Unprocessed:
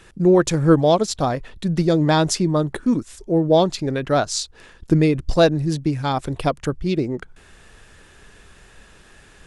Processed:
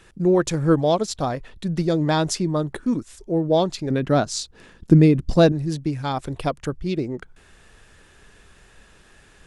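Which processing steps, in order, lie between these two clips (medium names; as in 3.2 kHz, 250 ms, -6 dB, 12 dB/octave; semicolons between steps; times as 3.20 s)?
3.90–5.52 s: peaking EQ 200 Hz +9 dB 1.8 oct; trim -3.5 dB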